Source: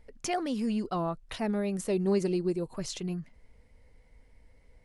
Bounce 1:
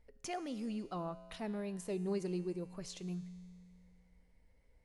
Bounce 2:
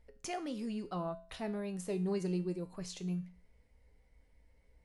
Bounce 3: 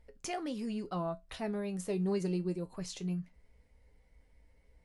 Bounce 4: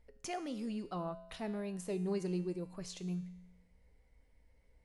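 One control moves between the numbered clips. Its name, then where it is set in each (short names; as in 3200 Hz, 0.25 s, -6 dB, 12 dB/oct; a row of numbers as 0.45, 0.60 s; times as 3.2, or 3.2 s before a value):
resonator, decay: 2.1, 0.42, 0.18, 0.9 s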